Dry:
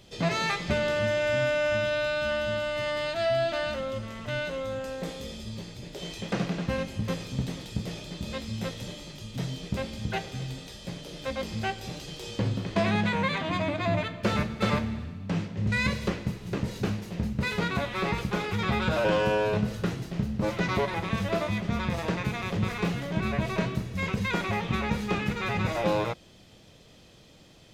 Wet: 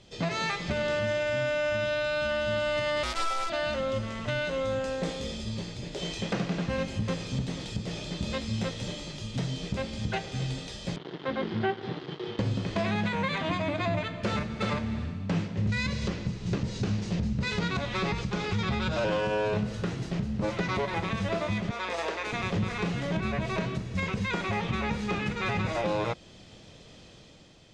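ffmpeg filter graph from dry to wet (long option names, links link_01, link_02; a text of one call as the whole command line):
ffmpeg -i in.wav -filter_complex "[0:a]asettb=1/sr,asplit=3[link_01][link_02][link_03];[link_01]atrim=end=3.034[link_04];[link_02]atrim=start=3.03:end=3.5,asetpts=PTS-STARTPTS,afade=type=in:duration=0.004:curve=qsin,afade=type=out:start_time=0.466:duration=0.004:curve=qsin,acrusher=bits=6:dc=4:mix=0:aa=0.000001,aeval=exprs='val(0)*sin(2*PI*660*n/s)':channel_layout=same[link_05];[link_03]atrim=start=3.496[link_06];[link_04][link_05]acrossfade=duration=0.004:curve1=hsin:curve2=qsin[link_07];[link_07][link_06]acrossfade=duration=0.004:curve1=qsin:curve2=hsin,asettb=1/sr,asplit=3[link_08][link_09][link_10];[link_08]atrim=end=10.964[link_11];[link_09]atrim=start=10.96:end=12.39,asetpts=PTS-STARTPTS,afade=type=in:duration=0.004:curve=qsin,afade=type=out:start_time=1.426:duration=0.004:curve=qsin,acrusher=bits=5:mix=0:aa=0.5,highpass=frequency=110:width=0.5412,highpass=frequency=110:width=1.3066,equalizer=frequency=370:width_type=q:width=4:gain=9,equalizer=frequency=570:width_type=q:width=4:gain=-6,equalizer=frequency=2500:width_type=q:width=4:gain=-10,lowpass=frequency=3200:width=0.5412,lowpass=frequency=3200:width=1.3066[link_12];[link_10]atrim=start=12.386[link_13];[link_11][link_12]acrossfade=duration=0.004:curve1=hsin:curve2=qsin[link_14];[link_14][link_13]acrossfade=duration=0.004:curve1=qsin:curve2=hsin,asettb=1/sr,asplit=3[link_15][link_16][link_17];[link_15]atrim=end=15.694[link_18];[link_16]atrim=start=15.69:end=19.09,asetpts=PTS-STARTPTS,afade=type=in:duration=0.004:curve=qsin,afade=type=out:start_time=3.396:duration=0.004:curve=qsin,lowpass=8600,bass=frequency=250:gain=5,treble=frequency=4000:gain=13,adynamicsmooth=sensitivity=0.5:basefreq=5900[link_19];[link_17]atrim=start=19.086[link_20];[link_18][link_19]acrossfade=duration=0.004:curve1=hsin:curve2=qsin[link_21];[link_21][link_20]acrossfade=duration=0.004:curve1=qsin:curve2=hsin,asettb=1/sr,asplit=3[link_22][link_23][link_24];[link_22]atrim=end=21.714[link_25];[link_23]atrim=start=21.71:end=22.33,asetpts=PTS-STARTPTS,afade=type=in:duration=0.004:curve=qsin,afade=type=out:start_time=0.616:duration=0.004:curve=qsin,highpass=frequency=370:width=0.5412,highpass=frequency=370:width=1.3066,aeval=exprs='val(0)+0.00224*(sin(2*PI*60*n/s)+sin(2*PI*2*60*n/s)/2+sin(2*PI*3*60*n/s)/3+sin(2*PI*4*60*n/s)/4+sin(2*PI*5*60*n/s)/5)':channel_layout=same[link_26];[link_24]atrim=start=22.326[link_27];[link_25][link_26]acrossfade=duration=0.004:curve1=hsin:curve2=qsin[link_28];[link_28][link_27]acrossfade=duration=0.004:curve1=qsin:curve2=hsin,lowpass=frequency=8400:width=0.5412,lowpass=frequency=8400:width=1.3066,dynaudnorm=framelen=110:gausssize=11:maxgain=5dB,alimiter=limit=-18dB:level=0:latency=1:release=260,volume=-1.5dB" out.wav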